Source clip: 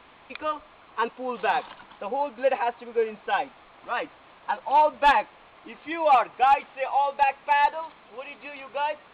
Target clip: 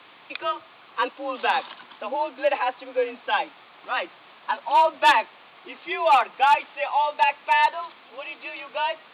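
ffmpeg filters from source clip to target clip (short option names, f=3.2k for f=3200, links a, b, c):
-af "afreqshift=43,highpass=f=130:w=0.5412,highpass=f=130:w=1.3066,highshelf=f=2.8k:g=11.5"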